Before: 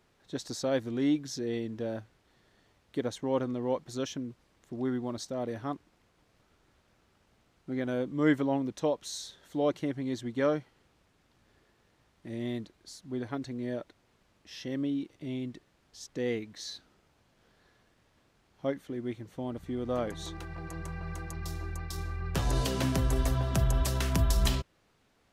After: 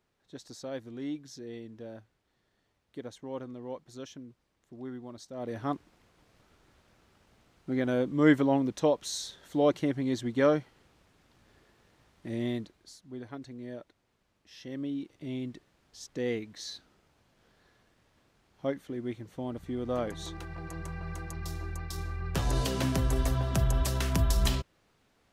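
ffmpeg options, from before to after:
ffmpeg -i in.wav -af "volume=10dB,afade=type=in:start_time=5.3:duration=0.41:silence=0.237137,afade=type=out:start_time=12.39:duration=0.64:silence=0.316228,afade=type=in:start_time=14.54:duration=0.84:silence=0.473151" out.wav

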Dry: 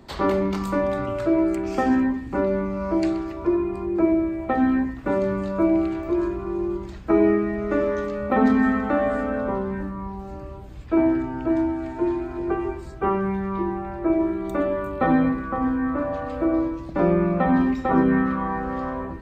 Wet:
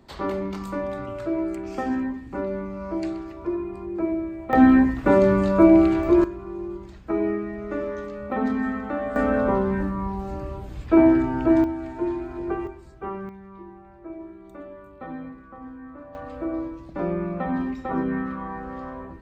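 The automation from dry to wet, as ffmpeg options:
ffmpeg -i in.wav -af "asetnsamples=nb_out_samples=441:pad=0,asendcmd='4.53 volume volume 6dB;6.24 volume volume -6.5dB;9.16 volume volume 4dB;11.64 volume volume -3dB;12.67 volume volume -10dB;13.29 volume volume -17dB;16.15 volume volume -7dB',volume=-6dB" out.wav

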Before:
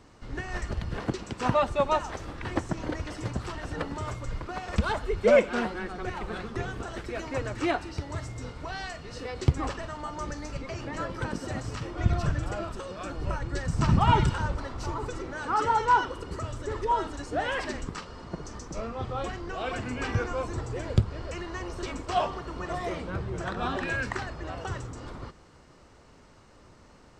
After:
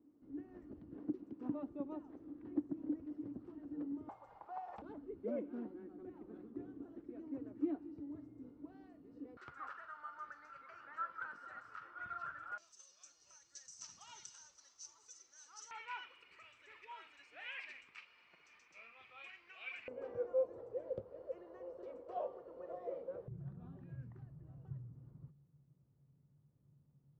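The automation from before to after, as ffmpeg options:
ffmpeg -i in.wav -af "asetnsamples=nb_out_samples=441:pad=0,asendcmd='4.09 bandpass f 810;4.82 bandpass f 290;9.37 bandpass f 1400;12.58 bandpass f 6100;15.71 bandpass f 2400;19.88 bandpass f 520;23.28 bandpass f 140',bandpass=frequency=290:width_type=q:width=10:csg=0" out.wav

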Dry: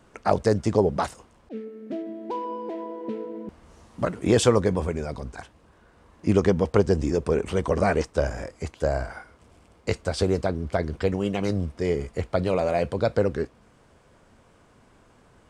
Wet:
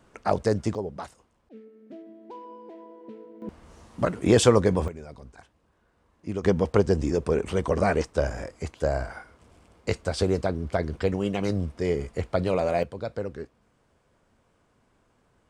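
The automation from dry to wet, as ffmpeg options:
ffmpeg -i in.wav -af "asetnsamples=nb_out_samples=441:pad=0,asendcmd='0.75 volume volume -11.5dB;3.42 volume volume 1dB;4.88 volume volume -11dB;6.44 volume volume -1dB;12.83 volume volume -9.5dB',volume=-2.5dB" out.wav

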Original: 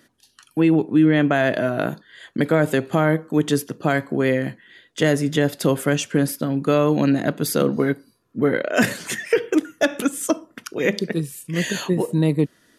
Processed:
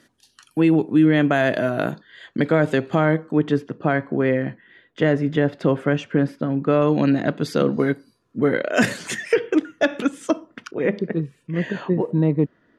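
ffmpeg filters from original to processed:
ffmpeg -i in.wav -af "asetnsamples=nb_out_samples=441:pad=0,asendcmd='1.91 lowpass f 5000;3.32 lowpass f 2200;6.82 lowpass f 4200;7.79 lowpass f 8400;9.35 lowpass f 4000;10.71 lowpass f 1600',lowpass=11000" out.wav

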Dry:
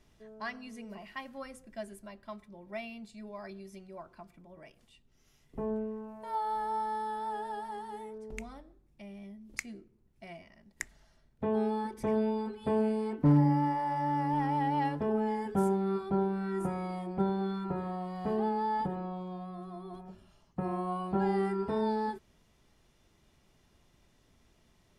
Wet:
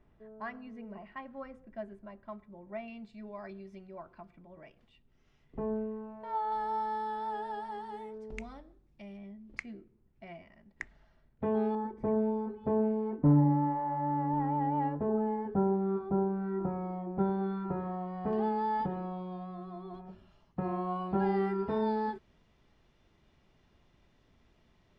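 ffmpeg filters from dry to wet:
ffmpeg -i in.wav -af "asetnsamples=nb_out_samples=441:pad=0,asendcmd='2.88 lowpass f 2800;6.52 lowpass f 5000;9.17 lowpass f 2600;11.75 lowpass f 1100;17.19 lowpass f 1900;18.33 lowpass f 3800',lowpass=1600" out.wav

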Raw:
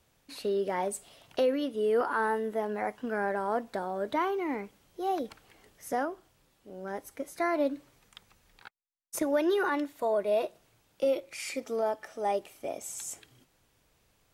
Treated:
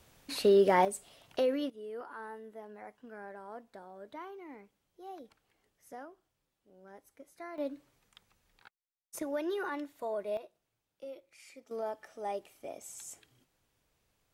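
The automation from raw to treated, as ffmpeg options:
ffmpeg -i in.wav -af "asetnsamples=nb_out_samples=441:pad=0,asendcmd='0.85 volume volume -3dB;1.7 volume volume -16dB;7.58 volume volume -8dB;10.37 volume volume -18dB;11.71 volume volume -7.5dB',volume=6.5dB" out.wav

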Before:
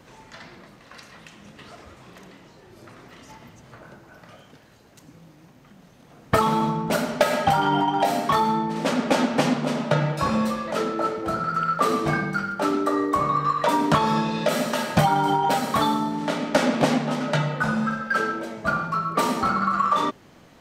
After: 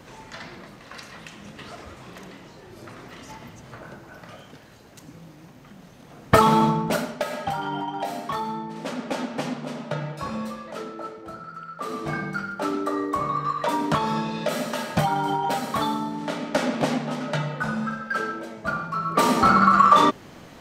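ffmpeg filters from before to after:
ffmpeg -i in.wav -af "volume=26dB,afade=type=out:start_time=6.63:duration=0.53:silence=0.251189,afade=type=out:start_time=10.54:duration=1.17:silence=0.421697,afade=type=in:start_time=11.71:duration=0.56:silence=0.251189,afade=type=in:start_time=18.93:duration=0.61:silence=0.316228" out.wav

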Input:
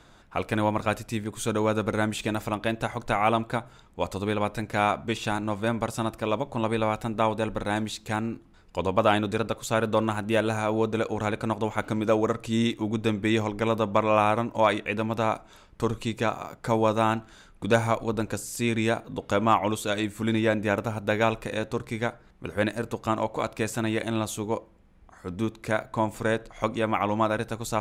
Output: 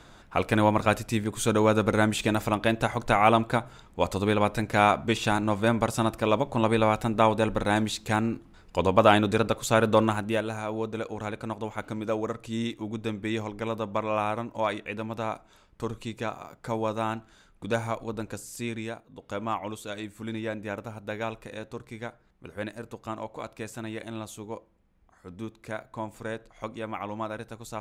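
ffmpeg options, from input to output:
ffmpeg -i in.wav -af "volume=10dB,afade=type=out:start_time=10:duration=0.45:silence=0.354813,afade=type=out:start_time=18.59:duration=0.48:silence=0.316228,afade=type=in:start_time=19.07:duration=0.29:silence=0.446684" out.wav

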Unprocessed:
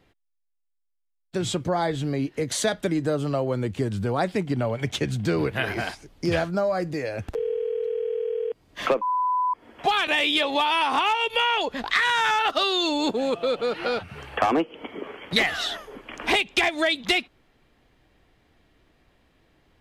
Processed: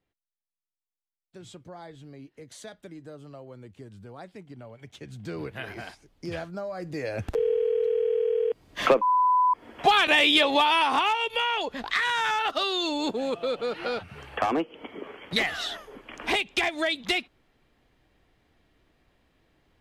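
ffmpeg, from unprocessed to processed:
ffmpeg -i in.wav -af "volume=2.5dB,afade=type=in:start_time=4.95:duration=0.46:silence=0.375837,afade=type=in:start_time=6.77:duration=0.62:silence=0.223872,afade=type=out:start_time=10.39:duration=0.93:silence=0.473151" out.wav

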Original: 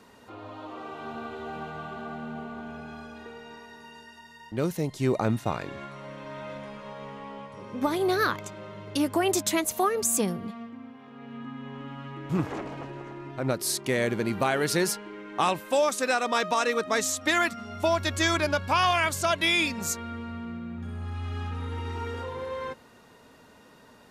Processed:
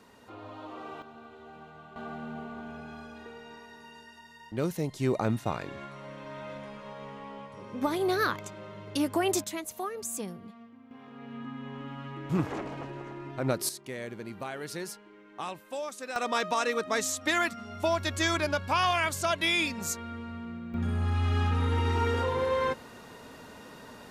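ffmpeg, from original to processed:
ffmpeg -i in.wav -af "asetnsamples=nb_out_samples=441:pad=0,asendcmd='1.02 volume volume -12dB;1.96 volume volume -2.5dB;9.44 volume volume -10.5dB;10.91 volume volume -1dB;13.69 volume volume -12.5dB;16.16 volume volume -3dB;20.74 volume volume 6.5dB',volume=-2.5dB" out.wav

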